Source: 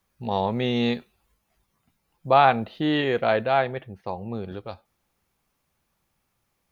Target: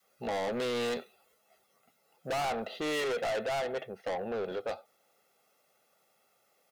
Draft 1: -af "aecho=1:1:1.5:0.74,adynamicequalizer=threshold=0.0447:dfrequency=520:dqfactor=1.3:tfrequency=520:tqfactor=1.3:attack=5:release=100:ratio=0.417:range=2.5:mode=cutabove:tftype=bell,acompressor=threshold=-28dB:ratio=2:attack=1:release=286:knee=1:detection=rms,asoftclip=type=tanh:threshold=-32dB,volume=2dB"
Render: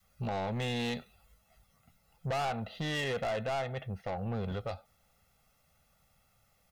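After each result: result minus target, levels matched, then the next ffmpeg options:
downward compressor: peak gain reduction +4.5 dB; 500 Hz band −2.5 dB
-af "aecho=1:1:1.5:0.74,adynamicequalizer=threshold=0.0447:dfrequency=520:dqfactor=1.3:tfrequency=520:tqfactor=1.3:attack=5:release=100:ratio=0.417:range=2.5:mode=cutabove:tftype=bell,acompressor=threshold=-17dB:ratio=2:attack=1:release=286:knee=1:detection=rms,asoftclip=type=tanh:threshold=-32dB,volume=2dB"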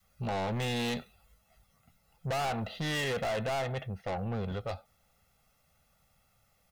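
500 Hz band −3.0 dB
-af "aecho=1:1:1.5:0.74,adynamicequalizer=threshold=0.0447:dfrequency=520:dqfactor=1.3:tfrequency=520:tqfactor=1.3:attack=5:release=100:ratio=0.417:range=2.5:mode=cutabove:tftype=bell,highpass=frequency=370:width_type=q:width=2.6,acompressor=threshold=-17dB:ratio=2:attack=1:release=286:knee=1:detection=rms,asoftclip=type=tanh:threshold=-32dB,volume=2dB"

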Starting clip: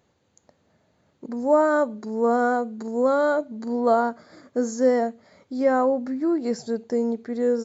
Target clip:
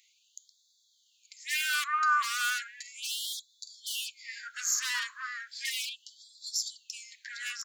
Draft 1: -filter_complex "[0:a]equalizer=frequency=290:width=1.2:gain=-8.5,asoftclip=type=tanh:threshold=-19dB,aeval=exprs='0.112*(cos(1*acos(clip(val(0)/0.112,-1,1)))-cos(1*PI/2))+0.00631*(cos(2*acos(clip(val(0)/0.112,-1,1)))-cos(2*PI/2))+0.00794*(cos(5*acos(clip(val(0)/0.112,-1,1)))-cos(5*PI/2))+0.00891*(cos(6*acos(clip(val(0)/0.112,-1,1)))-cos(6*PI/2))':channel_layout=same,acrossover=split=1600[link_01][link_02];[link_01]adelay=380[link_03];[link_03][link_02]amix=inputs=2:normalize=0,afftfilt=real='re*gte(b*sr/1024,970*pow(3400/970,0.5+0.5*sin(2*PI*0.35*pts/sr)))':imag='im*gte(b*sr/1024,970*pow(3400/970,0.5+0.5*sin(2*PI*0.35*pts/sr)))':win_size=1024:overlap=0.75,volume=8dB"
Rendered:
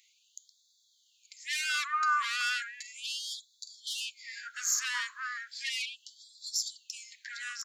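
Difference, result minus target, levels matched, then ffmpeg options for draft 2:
soft clipping: distortion +12 dB
-filter_complex "[0:a]equalizer=frequency=290:width=1.2:gain=-8.5,asoftclip=type=tanh:threshold=-10.5dB,aeval=exprs='0.112*(cos(1*acos(clip(val(0)/0.112,-1,1)))-cos(1*PI/2))+0.00631*(cos(2*acos(clip(val(0)/0.112,-1,1)))-cos(2*PI/2))+0.00794*(cos(5*acos(clip(val(0)/0.112,-1,1)))-cos(5*PI/2))+0.00891*(cos(6*acos(clip(val(0)/0.112,-1,1)))-cos(6*PI/2))':channel_layout=same,acrossover=split=1600[link_01][link_02];[link_01]adelay=380[link_03];[link_03][link_02]amix=inputs=2:normalize=0,afftfilt=real='re*gte(b*sr/1024,970*pow(3400/970,0.5+0.5*sin(2*PI*0.35*pts/sr)))':imag='im*gte(b*sr/1024,970*pow(3400/970,0.5+0.5*sin(2*PI*0.35*pts/sr)))':win_size=1024:overlap=0.75,volume=8dB"

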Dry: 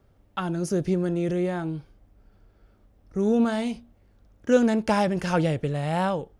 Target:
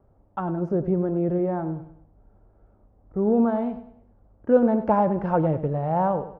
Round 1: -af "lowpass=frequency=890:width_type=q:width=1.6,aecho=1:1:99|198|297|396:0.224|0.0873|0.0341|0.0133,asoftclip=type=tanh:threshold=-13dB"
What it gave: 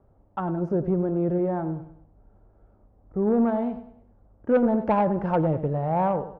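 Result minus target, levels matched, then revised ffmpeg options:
soft clipping: distortion +19 dB
-af "lowpass=frequency=890:width_type=q:width=1.6,aecho=1:1:99|198|297|396:0.224|0.0873|0.0341|0.0133,asoftclip=type=tanh:threshold=-1dB"

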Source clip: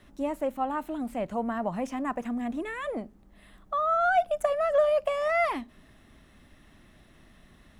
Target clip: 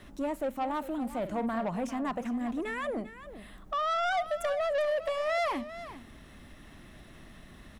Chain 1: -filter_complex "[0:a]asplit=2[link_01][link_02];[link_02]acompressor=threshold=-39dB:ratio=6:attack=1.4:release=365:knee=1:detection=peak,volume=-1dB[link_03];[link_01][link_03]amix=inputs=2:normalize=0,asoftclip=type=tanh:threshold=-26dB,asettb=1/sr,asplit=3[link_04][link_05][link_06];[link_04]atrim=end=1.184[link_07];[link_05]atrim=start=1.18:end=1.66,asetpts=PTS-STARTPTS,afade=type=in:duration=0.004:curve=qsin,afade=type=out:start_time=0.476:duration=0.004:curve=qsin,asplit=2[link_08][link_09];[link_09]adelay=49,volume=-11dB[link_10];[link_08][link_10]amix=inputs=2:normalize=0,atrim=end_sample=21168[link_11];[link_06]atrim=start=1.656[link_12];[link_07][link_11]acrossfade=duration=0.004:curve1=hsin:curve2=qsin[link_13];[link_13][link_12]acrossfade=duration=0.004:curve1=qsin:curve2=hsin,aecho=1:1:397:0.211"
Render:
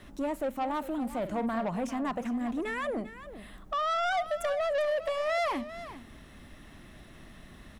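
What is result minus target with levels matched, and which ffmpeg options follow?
downward compressor: peak gain reduction −9 dB
-filter_complex "[0:a]asplit=2[link_01][link_02];[link_02]acompressor=threshold=-50dB:ratio=6:attack=1.4:release=365:knee=1:detection=peak,volume=-1dB[link_03];[link_01][link_03]amix=inputs=2:normalize=0,asoftclip=type=tanh:threshold=-26dB,asettb=1/sr,asplit=3[link_04][link_05][link_06];[link_04]atrim=end=1.184[link_07];[link_05]atrim=start=1.18:end=1.66,asetpts=PTS-STARTPTS,afade=type=in:duration=0.004:curve=qsin,afade=type=out:start_time=0.476:duration=0.004:curve=qsin,asplit=2[link_08][link_09];[link_09]adelay=49,volume=-11dB[link_10];[link_08][link_10]amix=inputs=2:normalize=0,atrim=end_sample=21168[link_11];[link_06]atrim=start=1.656[link_12];[link_07][link_11]acrossfade=duration=0.004:curve1=hsin:curve2=qsin[link_13];[link_13][link_12]acrossfade=duration=0.004:curve1=qsin:curve2=hsin,aecho=1:1:397:0.211"

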